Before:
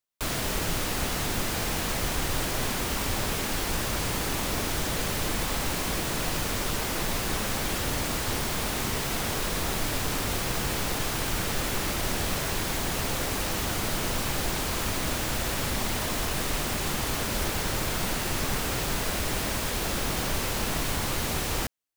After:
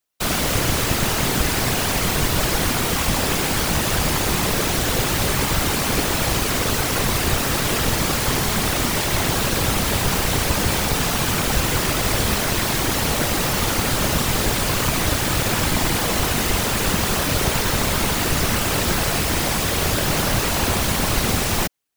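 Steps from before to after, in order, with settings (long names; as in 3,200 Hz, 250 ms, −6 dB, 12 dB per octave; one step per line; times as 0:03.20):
random phases in short frames
level +8.5 dB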